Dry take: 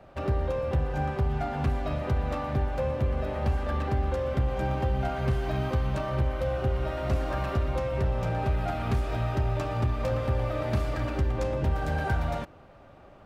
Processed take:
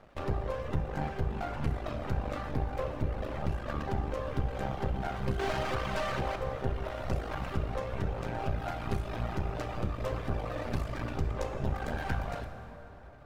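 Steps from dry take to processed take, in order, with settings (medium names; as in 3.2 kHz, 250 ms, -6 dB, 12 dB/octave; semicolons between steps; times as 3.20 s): 5.39–6.36 s: overdrive pedal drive 21 dB, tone 3.1 kHz, clips at -18 dBFS; half-wave rectifier; reverb removal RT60 1.1 s; plate-style reverb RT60 3.5 s, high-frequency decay 0.65×, DRR 6.5 dB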